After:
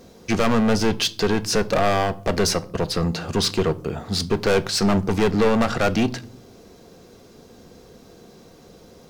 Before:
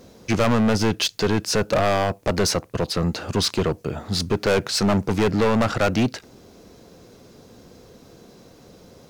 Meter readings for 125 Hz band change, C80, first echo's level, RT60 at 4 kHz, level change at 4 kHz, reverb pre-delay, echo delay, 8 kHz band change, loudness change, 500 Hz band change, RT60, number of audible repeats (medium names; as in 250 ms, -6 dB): -1.0 dB, 25.0 dB, no echo, 0.35 s, +0.5 dB, 3 ms, no echo, +0.5 dB, +0.5 dB, +0.5 dB, 0.50 s, no echo